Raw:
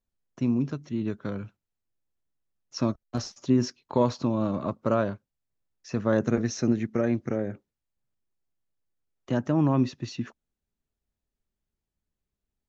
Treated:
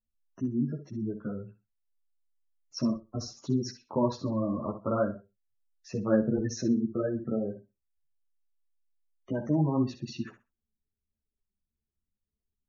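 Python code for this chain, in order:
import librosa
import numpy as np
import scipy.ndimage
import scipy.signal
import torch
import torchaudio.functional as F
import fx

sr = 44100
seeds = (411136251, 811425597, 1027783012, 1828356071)

y = fx.spec_gate(x, sr, threshold_db=-20, keep='strong')
y = fx.echo_feedback(y, sr, ms=63, feedback_pct=19, wet_db=-10.5)
y = fx.ensemble(y, sr)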